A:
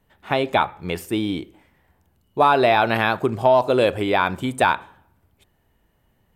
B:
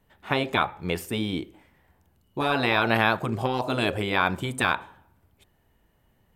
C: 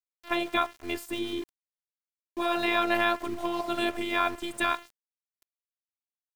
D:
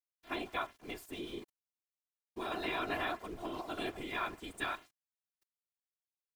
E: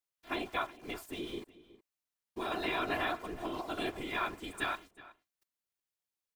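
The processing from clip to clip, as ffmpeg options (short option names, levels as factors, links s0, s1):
-af "afftfilt=real='re*lt(hypot(re,im),0.631)':imag='im*lt(hypot(re,im),0.631)':win_size=1024:overlap=0.75,volume=0.891"
-af "afftfilt=real='hypot(re,im)*cos(PI*b)':imag='0':win_size=512:overlap=0.75,aeval=exprs='val(0)*gte(abs(val(0)),0.00841)':c=same"
-af "afftfilt=real='hypot(re,im)*cos(2*PI*random(0))':imag='hypot(re,im)*sin(2*PI*random(1))':win_size=512:overlap=0.75,volume=0.596"
-filter_complex "[0:a]asplit=2[s0][s1];[s1]adelay=367.3,volume=0.126,highshelf=f=4000:g=-8.27[s2];[s0][s2]amix=inputs=2:normalize=0,volume=1.33"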